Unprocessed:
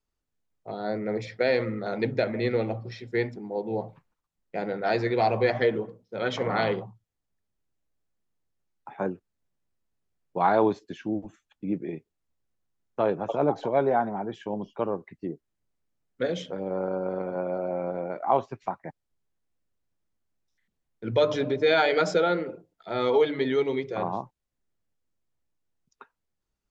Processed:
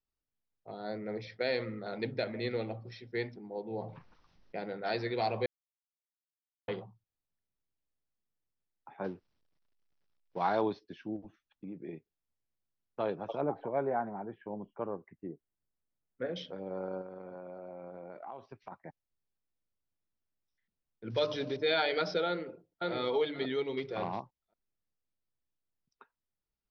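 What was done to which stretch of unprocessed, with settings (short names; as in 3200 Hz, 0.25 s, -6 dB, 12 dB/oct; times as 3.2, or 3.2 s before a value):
3.74–4.59 fast leveller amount 50%
5.46–6.68 mute
9.04–10.61 G.711 law mismatch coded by mu
11.16–11.81 compressor, threshold -30 dBFS
13.41–16.36 LPF 2100 Hz 24 dB/oct
17.01–18.72 compressor, threshold -32 dBFS
21.1–21.58 block floating point 5-bit
22.27–22.91 echo throw 0.54 s, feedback 15%, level -0.5 dB
23.77–24.2 sample leveller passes 1
whole clip: steep low-pass 5800 Hz 96 dB/oct; dynamic EQ 4000 Hz, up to +7 dB, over -48 dBFS, Q 1.1; gain -9 dB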